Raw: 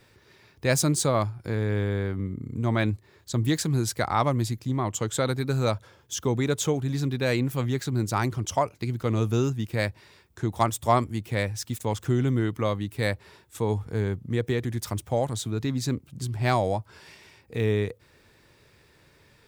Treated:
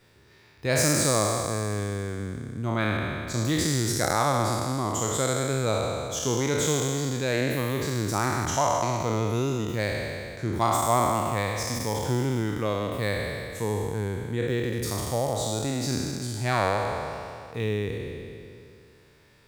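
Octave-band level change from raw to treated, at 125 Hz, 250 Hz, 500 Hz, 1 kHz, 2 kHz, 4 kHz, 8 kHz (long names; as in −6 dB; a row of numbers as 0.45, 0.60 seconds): −2.0, −1.0, +1.0, +2.5, +2.5, +3.0, +4.5 decibels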